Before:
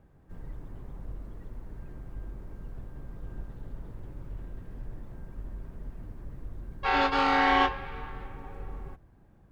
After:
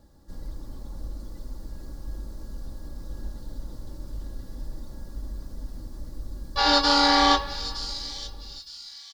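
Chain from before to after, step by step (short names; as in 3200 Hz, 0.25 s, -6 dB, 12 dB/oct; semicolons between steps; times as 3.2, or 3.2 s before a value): ending faded out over 1.66 s; resonant high shelf 3200 Hz +11 dB, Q 3; comb 3.7 ms, depth 53%; on a send: thin delay 0.953 s, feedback 40%, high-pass 5500 Hz, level -5 dB; on the sum: speed mistake 24 fps film run at 25 fps; gain +2 dB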